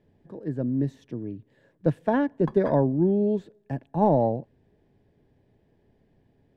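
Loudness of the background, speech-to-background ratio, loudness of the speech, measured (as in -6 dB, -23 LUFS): -43.5 LUFS, 17.5 dB, -26.0 LUFS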